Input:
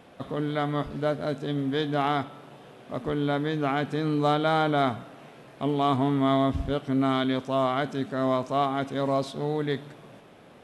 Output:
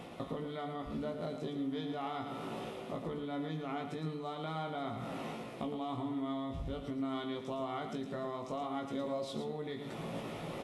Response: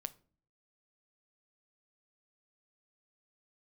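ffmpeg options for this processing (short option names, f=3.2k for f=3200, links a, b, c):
-filter_complex "[0:a]bandreject=f=1.6k:w=5.9,areverse,acompressor=mode=upward:threshold=-34dB:ratio=2.5,areverse,alimiter=limit=-22.5dB:level=0:latency=1:release=163,acompressor=threshold=-39dB:ratio=4,asplit=2[a][b];[b]adelay=18,volume=-5.5dB[c];[a][c]amix=inputs=2:normalize=0,aecho=1:1:112:0.398[d];[1:a]atrim=start_sample=2205,asetrate=52920,aresample=44100[e];[d][e]afir=irnorm=-1:irlink=0,volume=5dB"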